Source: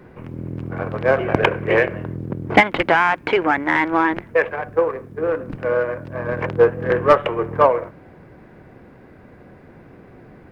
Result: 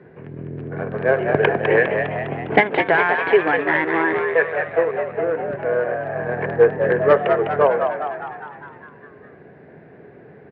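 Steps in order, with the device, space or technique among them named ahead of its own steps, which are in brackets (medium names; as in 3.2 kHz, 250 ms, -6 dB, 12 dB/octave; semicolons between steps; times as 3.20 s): frequency-shifting delay pedal into a guitar cabinet (frequency-shifting echo 203 ms, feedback 60%, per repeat +82 Hz, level -6 dB; cabinet simulation 90–3900 Hz, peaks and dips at 150 Hz +7 dB, 420 Hz +10 dB, 680 Hz +5 dB, 1.2 kHz -3 dB, 1.7 kHz +8 dB); trim -5.5 dB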